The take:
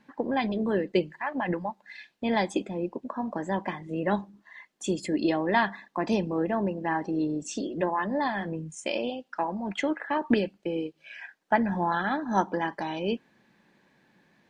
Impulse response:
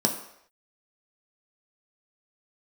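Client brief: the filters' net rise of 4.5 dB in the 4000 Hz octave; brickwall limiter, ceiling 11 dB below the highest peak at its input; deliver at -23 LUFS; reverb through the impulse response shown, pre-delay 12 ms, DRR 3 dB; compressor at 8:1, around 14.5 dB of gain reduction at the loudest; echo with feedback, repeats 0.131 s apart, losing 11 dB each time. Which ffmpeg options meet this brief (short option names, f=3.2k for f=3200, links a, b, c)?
-filter_complex "[0:a]equalizer=f=4k:t=o:g=6,acompressor=threshold=-33dB:ratio=8,alimiter=level_in=6dB:limit=-24dB:level=0:latency=1,volume=-6dB,aecho=1:1:131|262|393:0.282|0.0789|0.0221,asplit=2[a][b];[1:a]atrim=start_sample=2205,adelay=12[c];[b][c]afir=irnorm=-1:irlink=0,volume=-13.5dB[d];[a][d]amix=inputs=2:normalize=0,volume=11.5dB"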